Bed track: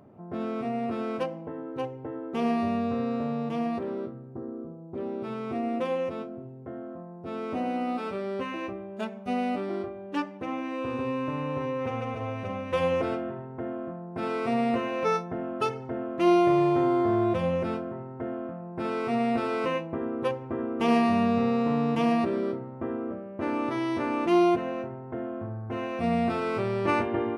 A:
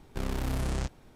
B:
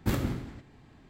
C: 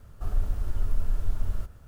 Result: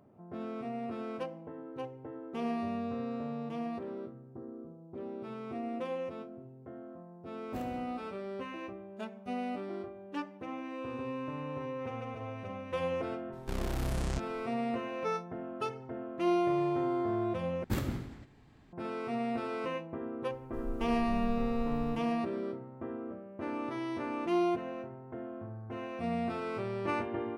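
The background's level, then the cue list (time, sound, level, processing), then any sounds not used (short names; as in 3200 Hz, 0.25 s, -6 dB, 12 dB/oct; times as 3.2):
bed track -8 dB
7.47 add B -18 dB
13.32 add A -2.5 dB, fades 0.02 s
17.64 replace with B -4.5 dB
20.32 add C -14 dB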